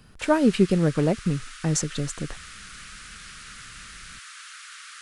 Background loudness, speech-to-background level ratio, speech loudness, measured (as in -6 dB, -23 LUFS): -41.0 LUFS, 17.0 dB, -24.0 LUFS